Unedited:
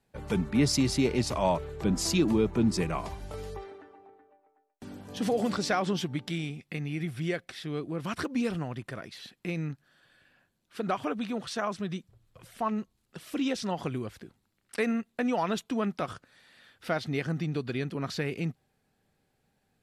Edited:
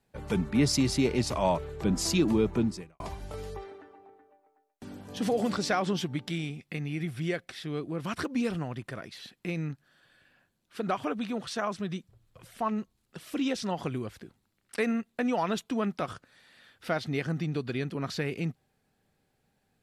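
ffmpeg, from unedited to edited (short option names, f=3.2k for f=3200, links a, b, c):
-filter_complex "[0:a]asplit=2[a][b];[a]atrim=end=3,asetpts=PTS-STARTPTS,afade=t=out:st=2.58:d=0.42:c=qua[c];[b]atrim=start=3,asetpts=PTS-STARTPTS,afade=t=in:d=0.004:c=hsin[d];[c][d]concat=n=2:v=0:a=1"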